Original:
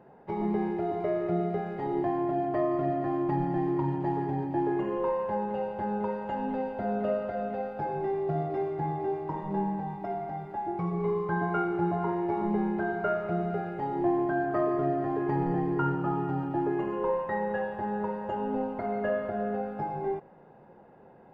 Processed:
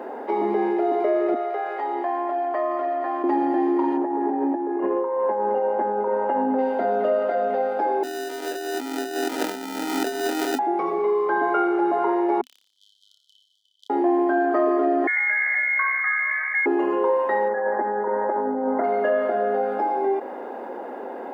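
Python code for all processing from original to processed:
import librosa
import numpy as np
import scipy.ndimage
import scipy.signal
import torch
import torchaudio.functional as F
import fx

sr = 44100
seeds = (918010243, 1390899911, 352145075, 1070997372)

y = fx.chain(x, sr, fx.highpass(hz=850.0, slope=12),
    fx.high_shelf(hz=2100.0, db=-9.5), at=(1.34, 3.24))
y = fx.chain(y, sr, fx.lowpass(hz=1500.0, slope=12),
    fx.over_compress(threshold_db=-32.0, ratio=-0.5), at=(3.97, 6.59))
y = fx.chain(y, sr, fx.over_compress(threshold_db=-38.0, ratio=-0.5),
    fx.sample_hold(seeds[0], rate_hz=1100.0, jitter_pct=0), at=(8.03, 10.59))
y = fx.chain(y, sr, fx.sine_speech(),
    fx.brickwall_highpass(low_hz=3000.0),
    fx.room_flutter(wall_m=5.0, rt60_s=0.51), at=(12.41, 13.9))
y = fx.chain(y, sr, fx.cheby1_highpass(hz=320.0, order=5),
    fx.air_absorb(metres=430.0),
    fx.freq_invert(carrier_hz=2500), at=(15.07, 16.66))
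y = fx.chain(y, sr, fx.over_compress(threshold_db=-33.0, ratio=-0.5),
    fx.brickwall_bandpass(low_hz=170.0, high_hz=2100.0), at=(17.48, 18.84))
y = scipy.signal.sosfilt(scipy.signal.ellip(4, 1.0, 40, 250.0, 'highpass', fs=sr, output='sos'), y)
y = fx.notch(y, sr, hz=2600.0, q=26.0)
y = fx.env_flatten(y, sr, amount_pct=50)
y = y * librosa.db_to_amplitude(6.0)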